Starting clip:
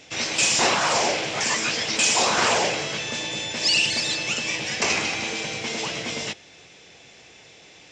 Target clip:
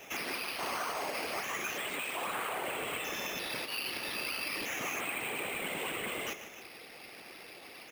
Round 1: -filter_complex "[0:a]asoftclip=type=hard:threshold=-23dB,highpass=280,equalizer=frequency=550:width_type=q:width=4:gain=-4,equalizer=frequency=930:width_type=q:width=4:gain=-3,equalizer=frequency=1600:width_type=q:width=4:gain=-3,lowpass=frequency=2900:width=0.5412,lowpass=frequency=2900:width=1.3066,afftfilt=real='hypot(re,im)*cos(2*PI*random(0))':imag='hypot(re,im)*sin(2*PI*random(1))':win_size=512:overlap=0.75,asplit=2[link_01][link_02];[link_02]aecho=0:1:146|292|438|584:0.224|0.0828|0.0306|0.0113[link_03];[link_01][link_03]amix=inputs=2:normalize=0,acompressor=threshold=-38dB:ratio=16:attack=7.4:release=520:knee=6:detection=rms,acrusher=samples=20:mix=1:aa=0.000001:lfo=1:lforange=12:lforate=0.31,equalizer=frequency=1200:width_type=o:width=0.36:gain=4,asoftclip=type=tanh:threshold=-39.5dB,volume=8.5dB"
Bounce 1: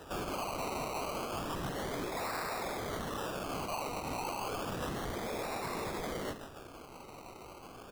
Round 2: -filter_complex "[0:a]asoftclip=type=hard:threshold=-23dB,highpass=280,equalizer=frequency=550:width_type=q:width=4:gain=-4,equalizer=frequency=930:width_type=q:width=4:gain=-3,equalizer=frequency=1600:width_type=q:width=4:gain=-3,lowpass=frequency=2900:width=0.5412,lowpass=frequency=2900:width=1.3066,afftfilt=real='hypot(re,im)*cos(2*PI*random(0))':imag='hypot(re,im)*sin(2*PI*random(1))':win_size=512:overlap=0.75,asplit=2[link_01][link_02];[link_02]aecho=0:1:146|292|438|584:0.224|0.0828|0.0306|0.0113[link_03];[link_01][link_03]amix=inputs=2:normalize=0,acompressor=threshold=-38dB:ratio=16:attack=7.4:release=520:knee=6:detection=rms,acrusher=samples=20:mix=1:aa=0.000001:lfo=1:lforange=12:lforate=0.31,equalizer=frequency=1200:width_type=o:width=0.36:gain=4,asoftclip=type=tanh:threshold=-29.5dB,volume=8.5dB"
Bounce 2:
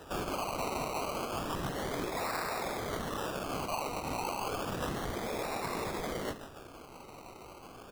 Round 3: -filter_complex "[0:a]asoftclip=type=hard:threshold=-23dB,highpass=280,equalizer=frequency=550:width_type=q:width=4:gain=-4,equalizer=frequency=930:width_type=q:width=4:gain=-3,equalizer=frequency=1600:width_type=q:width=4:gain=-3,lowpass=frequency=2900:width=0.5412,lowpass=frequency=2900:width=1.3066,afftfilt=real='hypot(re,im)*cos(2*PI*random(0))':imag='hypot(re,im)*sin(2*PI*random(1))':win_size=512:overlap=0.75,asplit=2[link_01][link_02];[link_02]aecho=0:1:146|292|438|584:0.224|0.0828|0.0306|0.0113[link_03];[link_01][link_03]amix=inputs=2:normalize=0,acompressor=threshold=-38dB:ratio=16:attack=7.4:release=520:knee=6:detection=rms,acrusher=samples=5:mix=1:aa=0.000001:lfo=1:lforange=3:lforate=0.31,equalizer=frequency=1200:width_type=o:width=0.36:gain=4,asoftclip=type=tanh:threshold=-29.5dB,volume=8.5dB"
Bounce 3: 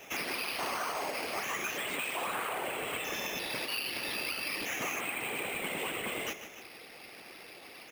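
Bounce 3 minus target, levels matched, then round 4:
hard clipping: distortion −5 dB
-filter_complex "[0:a]asoftclip=type=hard:threshold=-31dB,highpass=280,equalizer=frequency=550:width_type=q:width=4:gain=-4,equalizer=frequency=930:width_type=q:width=4:gain=-3,equalizer=frequency=1600:width_type=q:width=4:gain=-3,lowpass=frequency=2900:width=0.5412,lowpass=frequency=2900:width=1.3066,afftfilt=real='hypot(re,im)*cos(2*PI*random(0))':imag='hypot(re,im)*sin(2*PI*random(1))':win_size=512:overlap=0.75,asplit=2[link_01][link_02];[link_02]aecho=0:1:146|292|438|584:0.224|0.0828|0.0306|0.0113[link_03];[link_01][link_03]amix=inputs=2:normalize=0,acompressor=threshold=-38dB:ratio=16:attack=7.4:release=520:knee=6:detection=rms,acrusher=samples=5:mix=1:aa=0.000001:lfo=1:lforange=3:lforate=0.31,equalizer=frequency=1200:width_type=o:width=0.36:gain=4,asoftclip=type=tanh:threshold=-29.5dB,volume=8.5dB"

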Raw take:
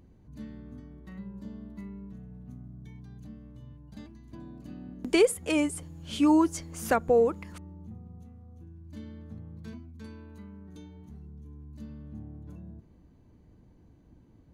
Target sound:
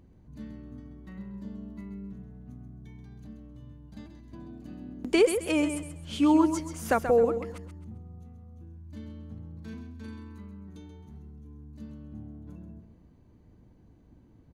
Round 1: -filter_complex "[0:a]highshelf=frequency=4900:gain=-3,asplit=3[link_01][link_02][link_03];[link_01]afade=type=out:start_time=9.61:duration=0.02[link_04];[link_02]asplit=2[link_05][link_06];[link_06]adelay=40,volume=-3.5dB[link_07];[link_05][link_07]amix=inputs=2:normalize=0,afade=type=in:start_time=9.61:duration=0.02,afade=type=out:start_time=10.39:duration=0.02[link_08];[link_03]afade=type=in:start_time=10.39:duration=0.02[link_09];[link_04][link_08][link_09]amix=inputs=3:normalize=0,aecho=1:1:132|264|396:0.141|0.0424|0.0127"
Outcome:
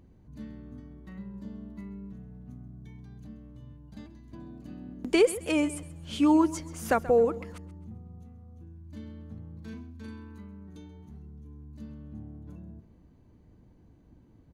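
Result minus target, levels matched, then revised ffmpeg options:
echo-to-direct −8 dB
-filter_complex "[0:a]highshelf=frequency=4900:gain=-3,asplit=3[link_01][link_02][link_03];[link_01]afade=type=out:start_time=9.61:duration=0.02[link_04];[link_02]asplit=2[link_05][link_06];[link_06]adelay=40,volume=-3.5dB[link_07];[link_05][link_07]amix=inputs=2:normalize=0,afade=type=in:start_time=9.61:duration=0.02,afade=type=out:start_time=10.39:duration=0.02[link_08];[link_03]afade=type=in:start_time=10.39:duration=0.02[link_09];[link_04][link_08][link_09]amix=inputs=3:normalize=0,aecho=1:1:132|264|396:0.355|0.106|0.0319"

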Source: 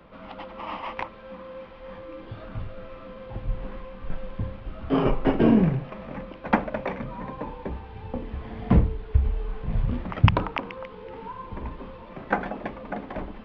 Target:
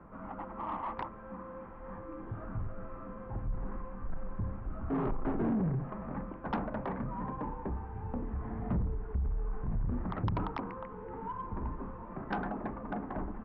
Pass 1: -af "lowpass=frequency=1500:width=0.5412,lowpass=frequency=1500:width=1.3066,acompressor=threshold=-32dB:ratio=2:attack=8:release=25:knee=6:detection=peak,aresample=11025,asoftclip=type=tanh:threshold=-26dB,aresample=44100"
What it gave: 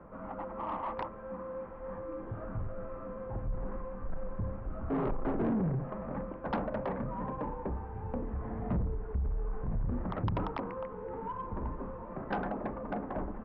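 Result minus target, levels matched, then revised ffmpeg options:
500 Hz band +3.5 dB
-af "lowpass=frequency=1500:width=0.5412,lowpass=frequency=1500:width=1.3066,acompressor=threshold=-32dB:ratio=2:attack=8:release=25:knee=6:detection=peak,equalizer=frequency=540:width_type=o:width=0.53:gain=-7.5,aresample=11025,asoftclip=type=tanh:threshold=-26dB,aresample=44100"

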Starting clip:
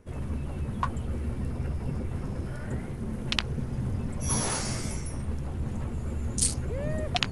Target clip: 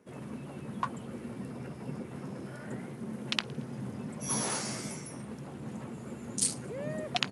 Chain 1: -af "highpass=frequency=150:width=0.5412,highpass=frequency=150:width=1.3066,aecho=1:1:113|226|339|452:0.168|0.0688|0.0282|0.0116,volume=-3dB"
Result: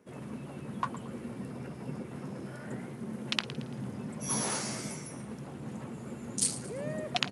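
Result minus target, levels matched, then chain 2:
echo-to-direct +11.5 dB
-af "highpass=frequency=150:width=0.5412,highpass=frequency=150:width=1.3066,aecho=1:1:113|226:0.0447|0.0183,volume=-3dB"

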